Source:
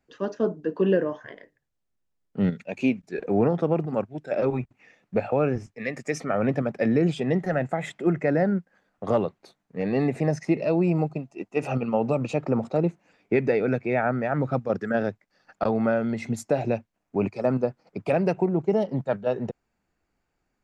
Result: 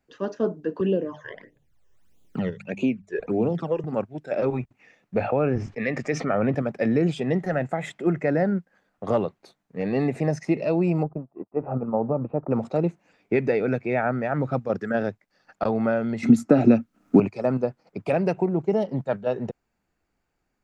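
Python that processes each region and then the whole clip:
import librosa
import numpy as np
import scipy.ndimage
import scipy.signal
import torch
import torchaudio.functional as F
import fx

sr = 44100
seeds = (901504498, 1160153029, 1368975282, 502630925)

y = fx.chain(x, sr, fx.hum_notches(base_hz=50, count=4),
    fx.phaser_stages(stages=12, low_hz=220.0, high_hz=1800.0, hz=1.6, feedback_pct=25),
    fx.band_squash(depth_pct=70), at=(0.8, 3.84))
y = fx.chain(y, sr, fx.median_filter(points=3),
    fx.air_absorb(metres=130.0),
    fx.env_flatten(amount_pct=50), at=(5.2, 6.55))
y = fx.chain(y, sr, fx.law_mismatch(coded='A'),
    fx.lowpass(hz=1200.0, slope=24), at=(11.03, 12.51))
y = fx.chain(y, sr, fx.small_body(hz=(250.0, 1300.0), ring_ms=30, db=16),
    fx.band_squash(depth_pct=100), at=(16.23, 17.2))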